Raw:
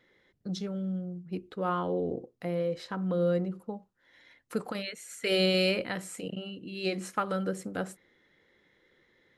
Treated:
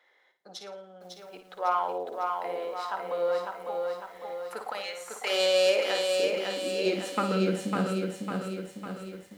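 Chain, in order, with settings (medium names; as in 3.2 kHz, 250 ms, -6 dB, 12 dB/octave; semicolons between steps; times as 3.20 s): self-modulated delay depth 0.061 ms; high-pass sweep 770 Hz -> 68 Hz, 5.26–9.08 s; on a send: flutter echo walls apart 9.5 m, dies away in 0.39 s; on the sum: bit-crushed delay 552 ms, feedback 55%, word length 10-bit, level -4 dB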